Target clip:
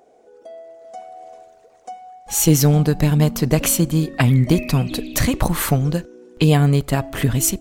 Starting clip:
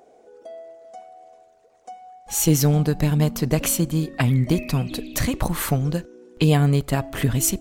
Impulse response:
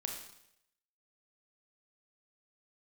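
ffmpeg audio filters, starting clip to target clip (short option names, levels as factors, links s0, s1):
-af "dynaudnorm=f=680:g=3:m=3.55,volume=0.891"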